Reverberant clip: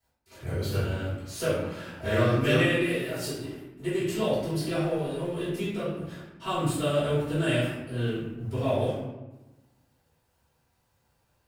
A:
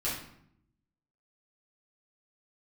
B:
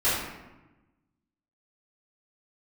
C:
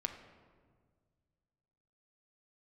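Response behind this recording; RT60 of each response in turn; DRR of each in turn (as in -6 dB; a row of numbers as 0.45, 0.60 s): B; 0.70, 1.1, 1.7 s; -9.5, -13.5, 4.0 dB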